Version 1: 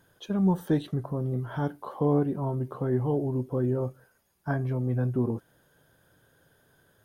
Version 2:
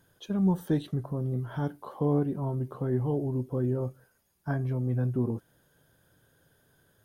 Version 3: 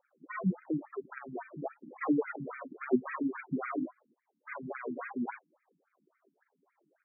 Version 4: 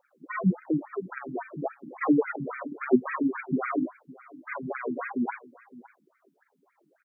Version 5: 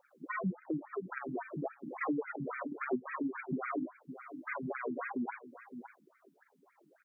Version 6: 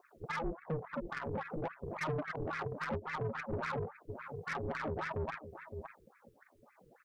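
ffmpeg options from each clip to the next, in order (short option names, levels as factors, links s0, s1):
-af "equalizer=f=990:w=0.33:g=-4"
-af "acrusher=samples=41:mix=1:aa=0.000001:lfo=1:lforange=24.6:lforate=0.86,aphaser=in_gain=1:out_gain=1:delay=4:decay=0.62:speed=1.7:type=triangular,afftfilt=real='re*between(b*sr/1024,220*pow(1800/220,0.5+0.5*sin(2*PI*3.6*pts/sr))/1.41,220*pow(1800/220,0.5+0.5*sin(2*PI*3.6*pts/sr))*1.41)':imag='im*between(b*sr/1024,220*pow(1800/220,0.5+0.5*sin(2*PI*3.6*pts/sr))/1.41,220*pow(1800/220,0.5+0.5*sin(2*PI*3.6*pts/sr))*1.41)':win_size=1024:overlap=0.75"
-af "aecho=1:1:562:0.1,volume=2.11"
-af "acompressor=threshold=0.0112:ratio=2.5,volume=1.12"
-af "aeval=exprs='(tanh(70.8*val(0)+0.3)-tanh(0.3))/70.8':c=same,aeval=exprs='val(0)*sin(2*PI*160*n/s)':c=same,volume=2.24"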